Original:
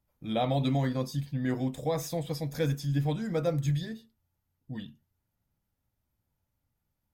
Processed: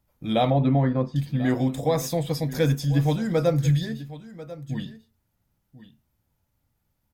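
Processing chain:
0:00.50–0:01.16: low-pass filter 1,600 Hz 12 dB per octave
on a send: single-tap delay 1,042 ms −16.5 dB
on the sum: level +7 dB

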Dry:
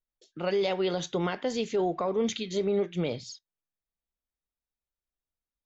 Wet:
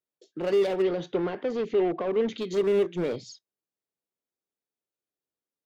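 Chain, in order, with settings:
high-pass filter 100 Hz 24 dB per octave
parametric band 390 Hz +11 dB 1.5 octaves
in parallel at −5 dB: wave folding −25 dBFS
0:00.82–0:02.38: on the sum: high-frequency loss of the air 200 metres
level −6.5 dB

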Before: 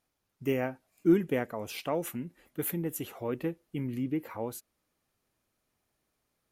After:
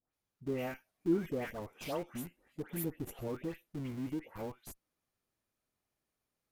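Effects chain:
all-pass dispersion highs, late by 139 ms, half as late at 1,700 Hz
0:02.84–0:03.28: tilt shelving filter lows +5 dB, about 810 Hz
in parallel at −8.5 dB: comparator with hysteresis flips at −35.5 dBFS
on the sum: level −8 dB

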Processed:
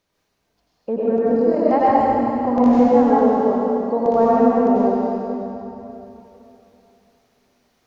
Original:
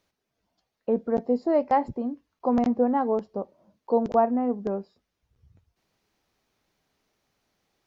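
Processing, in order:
0:01.16–0:01.66: amplitude modulation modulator 39 Hz, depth 75%
convolution reverb RT60 3.2 s, pre-delay 82 ms, DRR −9 dB

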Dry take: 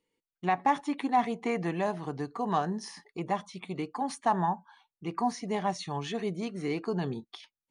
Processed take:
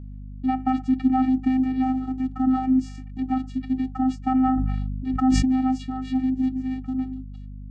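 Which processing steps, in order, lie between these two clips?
fade-out on the ending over 1.99 s
low-shelf EQ 130 Hz +10.5 dB
in parallel at −3 dB: compressor whose output falls as the input rises −31 dBFS
on the sum: channel vocoder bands 8, square 259 Hz
mains hum 50 Hz, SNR 13 dB
0:04.24–0:05.45: level that may fall only so fast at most 22 dB per second
level +4.5 dB

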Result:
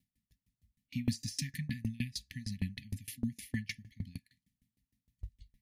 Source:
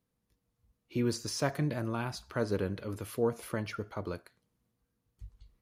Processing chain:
brick-wall band-stop 270–1,700 Hz
tremolo with a ramp in dB decaying 6.5 Hz, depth 27 dB
level +7 dB

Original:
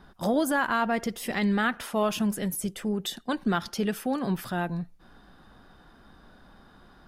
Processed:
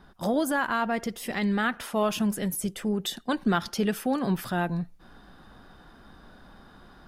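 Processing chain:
speech leveller 2 s

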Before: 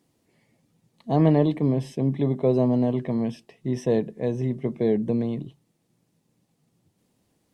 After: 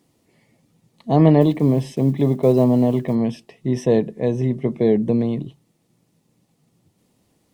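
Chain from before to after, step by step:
0:01.41–0:03.16: one scale factor per block 7 bits
notch filter 1,600 Hz, Q 16
level +5.5 dB

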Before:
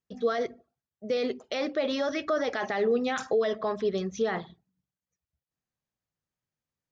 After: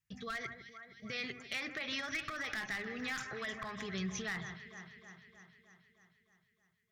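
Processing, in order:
brickwall limiter −23.5 dBFS, peak gain reduction 7 dB
octave-band graphic EQ 125/250/500/1,000/2,000/4,000 Hz +8/−10/−12/+5/+10/−4 dB
delay that swaps between a low-pass and a high-pass 155 ms, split 2,100 Hz, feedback 78%, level −12 dB
asymmetric clip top −26.5 dBFS
downward compressor, threshold −32 dBFS, peak gain reduction 6.5 dB
parametric band 850 Hz −12.5 dB 2.3 octaves
level +3 dB

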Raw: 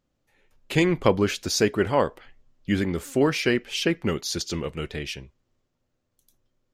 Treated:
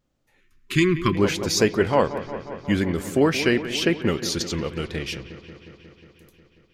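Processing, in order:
pitch vibrato 1.3 Hz 30 cents
delay with a low-pass on its return 180 ms, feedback 75%, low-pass 2,600 Hz, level −13 dB
gain on a spectral selection 0:00.40–0:01.16, 400–1,000 Hz −25 dB
level +2 dB

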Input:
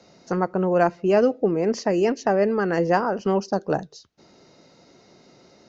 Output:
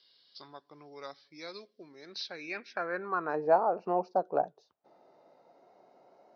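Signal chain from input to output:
gliding playback speed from 76% → 103%
band-pass filter sweep 4,700 Hz → 740 Hz, 0:02.00–0:03.50

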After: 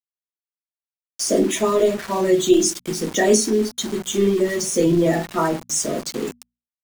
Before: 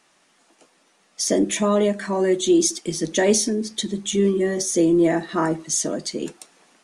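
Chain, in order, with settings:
spectral magnitudes quantised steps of 30 dB
on a send at −3 dB: convolution reverb, pre-delay 8 ms
on the sum: centre clipping without the shift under −29 dBFS
mains-hum notches 60/120/180/240 Hz

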